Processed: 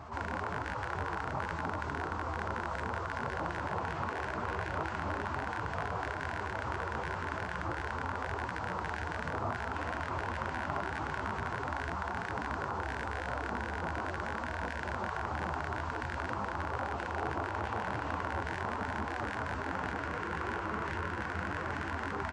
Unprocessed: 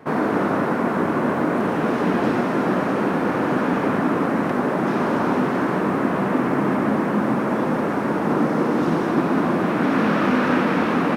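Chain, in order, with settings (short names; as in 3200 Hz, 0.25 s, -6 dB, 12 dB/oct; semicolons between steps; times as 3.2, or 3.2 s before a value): rattling part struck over -25 dBFS, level -13 dBFS; limiter -13.5 dBFS, peak gain reduction 8 dB; HPF 390 Hz 12 dB/oct; band-limited delay 74 ms, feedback 80%, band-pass 1100 Hz, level -6 dB; spectral gate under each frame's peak -15 dB weak; speed mistake 15 ips tape played at 7.5 ips; tilt shelf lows +7.5 dB, about 930 Hz; echo 0.395 s -15.5 dB; fast leveller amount 50%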